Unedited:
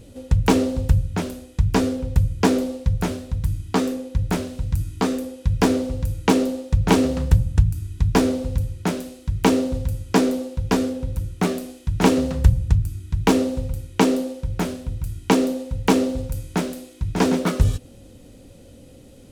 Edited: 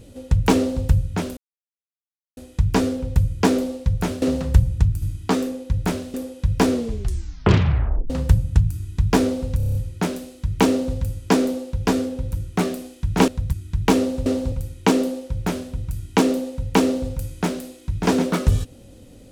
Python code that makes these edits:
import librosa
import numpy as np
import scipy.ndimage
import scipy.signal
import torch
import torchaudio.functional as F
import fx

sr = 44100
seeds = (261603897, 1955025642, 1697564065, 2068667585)

y = fx.edit(x, sr, fx.duplicate(start_s=0.57, length_s=0.26, to_s=13.65),
    fx.insert_silence(at_s=1.37, length_s=1.0),
    fx.swap(start_s=3.22, length_s=0.25, other_s=12.12, other_length_s=0.8),
    fx.cut(start_s=4.59, length_s=0.57),
    fx.tape_stop(start_s=5.73, length_s=1.39),
    fx.stutter(start_s=8.59, slice_s=0.03, count=7), tone=tone)